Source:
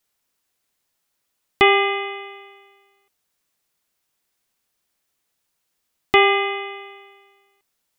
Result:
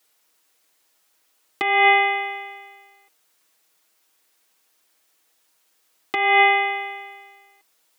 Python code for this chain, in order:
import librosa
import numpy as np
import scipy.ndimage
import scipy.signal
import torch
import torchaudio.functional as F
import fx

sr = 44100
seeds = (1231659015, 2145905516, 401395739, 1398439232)

y = fx.over_compress(x, sr, threshold_db=-21.0, ratio=-1.0)
y = scipy.signal.sosfilt(scipy.signal.butter(2, 300.0, 'highpass', fs=sr, output='sos'), y)
y = y + 0.5 * np.pad(y, (int(6.3 * sr / 1000.0), 0))[:len(y)]
y = y * librosa.db_to_amplitude(4.5)